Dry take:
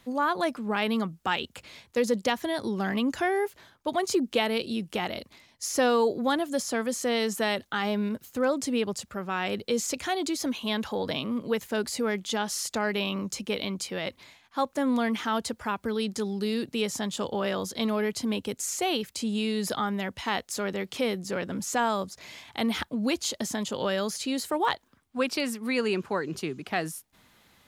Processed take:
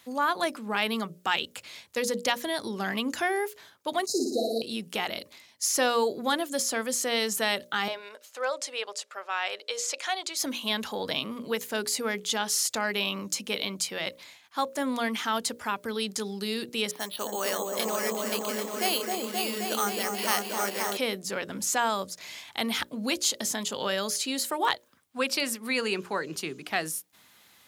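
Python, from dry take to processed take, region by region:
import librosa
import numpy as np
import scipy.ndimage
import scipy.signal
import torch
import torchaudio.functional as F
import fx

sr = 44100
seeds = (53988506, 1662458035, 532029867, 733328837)

y = fx.chain(x, sr, fx.brickwall_bandstop(low_hz=810.0, high_hz=3800.0),
    fx.high_shelf(hz=4000.0, db=-7.5),
    fx.room_flutter(wall_m=9.9, rt60_s=0.91), at=(4.06, 4.62))
y = fx.chain(y, sr, fx.highpass(hz=510.0, slope=24),
    fx.air_absorb(metres=59.0), at=(7.88, 10.37))
y = fx.chain(y, sr, fx.highpass(hz=320.0, slope=12),
    fx.echo_opening(ms=264, hz=750, octaves=1, feedback_pct=70, wet_db=0),
    fx.resample_bad(factor=6, down='filtered', up='hold'), at=(16.91, 20.97))
y = scipy.signal.sosfilt(scipy.signal.butter(2, 66.0, 'highpass', fs=sr, output='sos'), y)
y = fx.tilt_eq(y, sr, slope=2.0)
y = fx.hum_notches(y, sr, base_hz=60, count=10)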